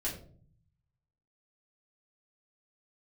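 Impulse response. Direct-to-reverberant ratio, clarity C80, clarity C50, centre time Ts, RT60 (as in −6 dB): −6.5 dB, 11.0 dB, 8.0 dB, 26 ms, 0.50 s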